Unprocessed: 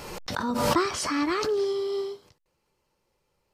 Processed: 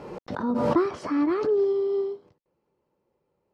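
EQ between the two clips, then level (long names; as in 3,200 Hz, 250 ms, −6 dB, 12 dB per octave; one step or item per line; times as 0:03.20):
resonant band-pass 320 Hz, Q 0.68
+4.0 dB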